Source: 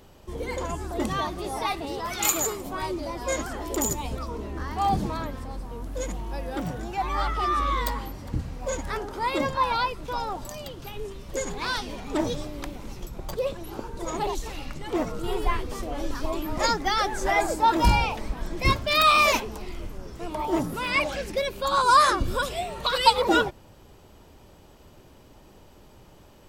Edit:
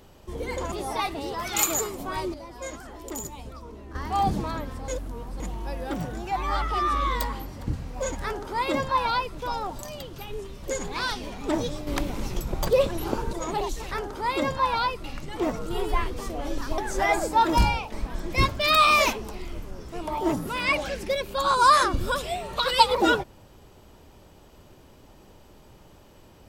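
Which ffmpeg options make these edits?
-filter_complex "[0:a]asplit=12[s0][s1][s2][s3][s4][s5][s6][s7][s8][s9][s10][s11];[s0]atrim=end=0.722[s12];[s1]atrim=start=1.378:end=3.002[s13];[s2]atrim=start=2.998:end=4.612,asetpts=PTS-STARTPTS,volume=0.376[s14];[s3]atrim=start=4.608:end=5.542[s15];[s4]atrim=start=5.538:end=6.062,asetpts=PTS-STARTPTS,areverse[s16];[s5]atrim=start=6.058:end=12.532[s17];[s6]atrim=start=12.528:end=13.992,asetpts=PTS-STARTPTS,volume=2.37[s18];[s7]atrim=start=13.988:end=14.572[s19];[s8]atrim=start=8.888:end=10.022[s20];[s9]atrim=start=14.568:end=16.312[s21];[s10]atrim=start=17.048:end=18.19,asetpts=PTS-STARTPTS,afade=t=out:st=0.782:d=0.36:silence=0.375837[s22];[s11]atrim=start=18.19,asetpts=PTS-STARTPTS,afade=t=in:d=0.004:c=hsin:silence=0.375837[s23];[s12][s13]acrossfade=d=0.004:c1=hsin:c2=hsin[s24];[s24][s14]acrossfade=d=0.004:c1=hsin:c2=hsin[s25];[s25][s15]acrossfade=d=0.004:c1=hsin:c2=hsin[s26];[s26][s16]acrossfade=d=0.004:c1=hsin:c2=hsin[s27];[s27][s17]acrossfade=d=0.004:c1=hsin:c2=hsin[s28];[s28][s18]acrossfade=d=0.004:c1=hsin:c2=hsin[s29];[s29][s19]acrossfade=d=0.004:c1=hsin:c2=hsin[s30];[s30][s20]acrossfade=d=0.004:c1=hsin:c2=hsin[s31];[s31][s21]acrossfade=d=0.004:c1=hsin:c2=hsin[s32];[s22][s23]concat=n=2:v=0:a=1[s33];[s32][s33]acrossfade=d=0.004:c1=hsin:c2=hsin"

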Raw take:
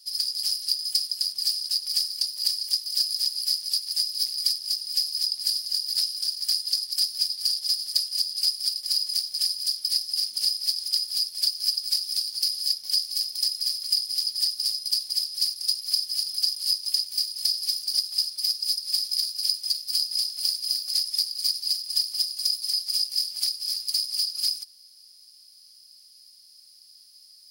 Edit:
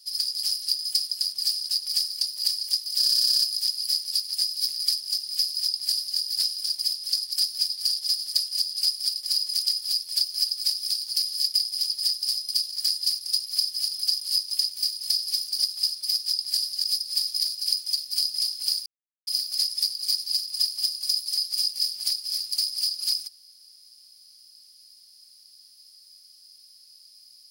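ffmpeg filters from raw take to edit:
-filter_complex "[0:a]asplit=17[s0][s1][s2][s3][s4][s5][s6][s7][s8][s9][s10][s11][s12][s13][s14][s15][s16];[s0]atrim=end=3.032[s17];[s1]atrim=start=2.968:end=3.032[s18];[s2]atrim=start=2.968:end=3.032[s19];[s3]atrim=start=2.968:end=3.032[s20];[s4]atrim=start=2.968:end=3.032[s21];[s5]atrim=start=2.968:end=3.032[s22];[s6]atrim=start=2.968:end=3.032[s23];[s7]atrim=start=2.968:end=6.332[s24];[s8]atrim=start=15.058:end=15.412[s25];[s9]atrim=start=6.698:end=9.202[s26];[s10]atrim=start=10.858:end=12.802[s27];[s11]atrim=start=13.908:end=15.062[s28];[s12]atrim=start=6.328:end=6.702[s29];[s13]atrim=start=15.408:end=18.612[s30];[s14]atrim=start=5.188:end=5.772[s31];[s15]atrim=start=18.608:end=20.63,asetpts=PTS-STARTPTS,afade=t=out:st=2.018:d=0.004:c=hsin,apad=pad_dur=0.41[s32];[s16]atrim=start=20.63,asetpts=PTS-STARTPTS,afade=t=in:d=0.004:c=hsin[s33];[s17][s18]acrossfade=d=0.004:c1=hsin:c2=hsin[s34];[s34][s19]acrossfade=d=0.004:c1=hsin:c2=hsin[s35];[s35][s20]acrossfade=d=0.004:c1=hsin:c2=hsin[s36];[s36][s21]acrossfade=d=0.004:c1=hsin:c2=hsin[s37];[s37][s22]acrossfade=d=0.004:c1=hsin:c2=hsin[s38];[s38][s23]acrossfade=d=0.004:c1=hsin:c2=hsin[s39];[s39][s24]acrossfade=d=0.004:c1=hsin:c2=hsin[s40];[s40][s25]acrossfade=d=0.004:c1=hsin:c2=hsin[s41];[s41][s26]acrossfade=d=0.004:c1=hsin:c2=hsin[s42];[s42][s27]acrossfade=d=0.004:c1=hsin:c2=hsin[s43];[s43][s28]acrossfade=d=0.004:c1=hsin:c2=hsin[s44];[s44][s29]acrossfade=d=0.004:c1=hsin:c2=hsin[s45];[s45][s30]acrossfade=d=0.004:c1=hsin:c2=hsin[s46];[s46][s31]acrossfade=d=0.004:c1=hsin:c2=hsin[s47];[s32][s33]concat=n=2:v=0:a=1[s48];[s47][s48]acrossfade=d=0.004:c1=hsin:c2=hsin"

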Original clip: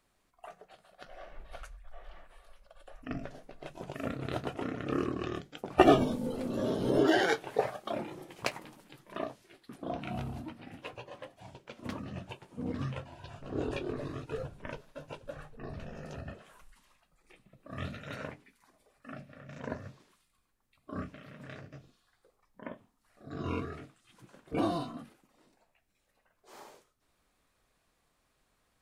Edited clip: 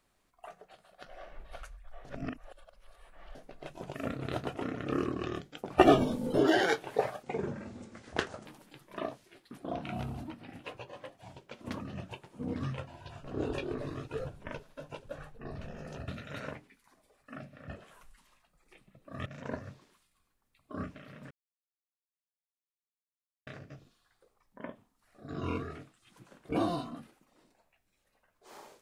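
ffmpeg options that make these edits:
-filter_complex "[0:a]asplit=10[s0][s1][s2][s3][s4][s5][s6][s7][s8][s9];[s0]atrim=end=2.052[s10];[s1]atrim=start=2.048:end=3.352,asetpts=PTS-STARTPTS,areverse[s11];[s2]atrim=start=3.348:end=6.342[s12];[s3]atrim=start=6.938:end=7.834[s13];[s4]atrim=start=7.83:end=8.64,asetpts=PTS-STARTPTS,asetrate=29106,aresample=44100[s14];[s5]atrim=start=8.636:end=16.262[s15];[s6]atrim=start=17.838:end=19.442[s16];[s7]atrim=start=16.258:end=17.842[s17];[s8]atrim=start=19.438:end=21.49,asetpts=PTS-STARTPTS,afade=t=out:st=2.048:d=0.004:c=hsin,apad=pad_dur=2.16[s18];[s9]atrim=start=21.49,asetpts=PTS-STARTPTS,afade=t=in:d=0.004:c=hsin[s19];[s10][s11]acrossfade=d=0.004:c1=hsin:c2=hsin[s20];[s20][s12]acrossfade=d=0.004:c1=hsin:c2=hsin[s21];[s21][s13]acrossfade=d=0.004:c1=hsin:c2=hsin[s22];[s22][s14]acrossfade=d=0.004:c1=hsin:c2=hsin[s23];[s23][s15]acrossfade=d=0.004:c1=hsin:c2=hsin[s24];[s24][s16]acrossfade=d=0.004:c1=hsin:c2=hsin[s25];[s25][s17]acrossfade=d=0.004:c1=hsin:c2=hsin[s26];[s18][s19]concat=n=2:v=0:a=1[s27];[s26][s27]acrossfade=d=0.004:c1=hsin:c2=hsin"

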